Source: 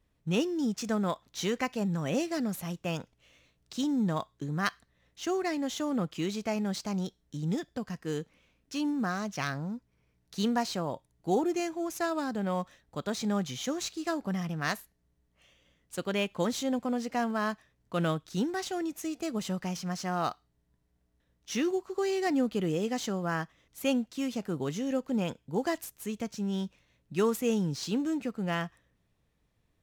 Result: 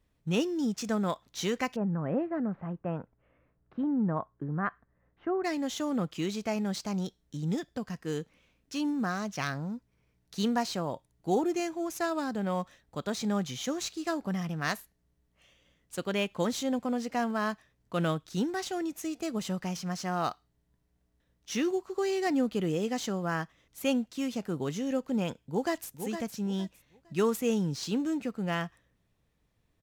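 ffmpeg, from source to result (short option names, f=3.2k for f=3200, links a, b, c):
-filter_complex "[0:a]asettb=1/sr,asplit=3[a][b][c];[a]atrim=end=1.764[d];[b]atrim=start=1.76:end=5.44,asetpts=PTS-STARTPTS,afade=t=in:d=0.004:c=qsin,afade=t=out:st=3.676:d=0.004:c=qsin,lowpass=f=1.6k:w=0.5412,lowpass=f=1.6k:w=1.3066[e];[c]atrim=start=5.436[f];[d][e]acrossfade=d=0.004:c1=hsin:c2=qsin[g];[g][f]acrossfade=d=0.004:c1=qsin:c2=hsin,asplit=2[h][i];[i]afade=t=in:st=25.36:d=0.01,afade=t=out:st=25.91:d=0.01,aecho=0:1:460|920|1380:0.375837|0.0939594|0.0234898[j];[h][j]amix=inputs=2:normalize=0"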